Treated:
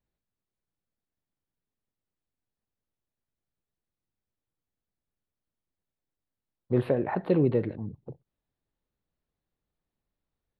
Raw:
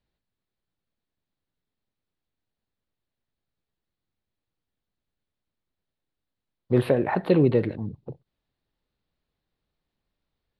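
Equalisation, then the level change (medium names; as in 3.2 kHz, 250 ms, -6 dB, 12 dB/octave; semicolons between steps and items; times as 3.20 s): treble shelf 3 kHz -11 dB; -4.0 dB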